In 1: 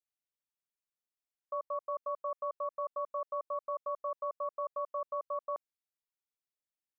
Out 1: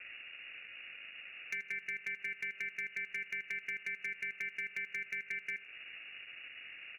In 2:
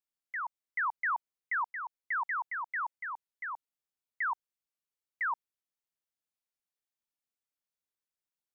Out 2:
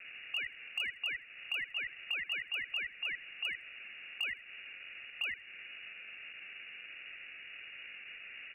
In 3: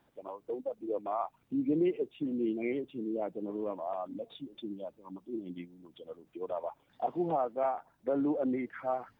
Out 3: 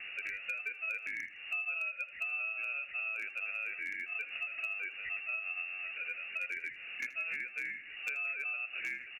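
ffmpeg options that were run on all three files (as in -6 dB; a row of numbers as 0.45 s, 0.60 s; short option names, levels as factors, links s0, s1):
-filter_complex "[0:a]aeval=exprs='val(0)+0.5*0.00562*sgn(val(0))':c=same,acrusher=samples=23:mix=1:aa=0.000001,acompressor=threshold=0.00891:ratio=12,lowpass=f=2500:t=q:w=0.5098,lowpass=f=2500:t=q:w=0.6013,lowpass=f=2500:t=q:w=0.9,lowpass=f=2500:t=q:w=2.563,afreqshift=-2900,asoftclip=type=hard:threshold=0.0178,highshelf=f=2100:g=10.5,asplit=2[s0][s1];[s1]aecho=0:1:80|160:0.141|0.0353[s2];[s0][s2]amix=inputs=2:normalize=0"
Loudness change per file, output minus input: -2.0 LU, -4.0 LU, -1.5 LU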